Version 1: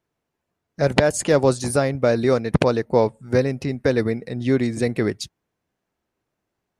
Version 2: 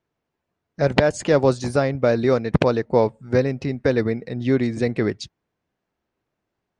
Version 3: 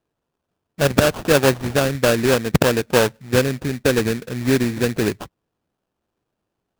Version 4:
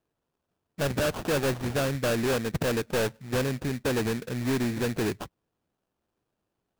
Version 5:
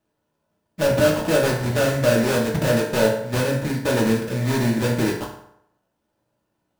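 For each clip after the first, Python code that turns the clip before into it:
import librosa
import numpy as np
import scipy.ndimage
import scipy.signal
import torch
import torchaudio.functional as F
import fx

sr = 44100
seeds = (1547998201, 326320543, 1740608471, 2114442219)

y1 = scipy.signal.sosfilt(scipy.signal.bessel(4, 5100.0, 'lowpass', norm='mag', fs=sr, output='sos'), x)
y2 = fx.sample_hold(y1, sr, seeds[0], rate_hz=2100.0, jitter_pct=20)
y2 = y2 * librosa.db_to_amplitude(1.5)
y3 = 10.0 ** (-19.0 / 20.0) * np.tanh(y2 / 10.0 ** (-19.0 / 20.0))
y3 = y3 * librosa.db_to_amplitude(-3.5)
y4 = fx.rev_fdn(y3, sr, rt60_s=0.75, lf_ratio=0.85, hf_ratio=0.7, size_ms=10.0, drr_db=-3.0)
y4 = y4 * librosa.db_to_amplitude(2.5)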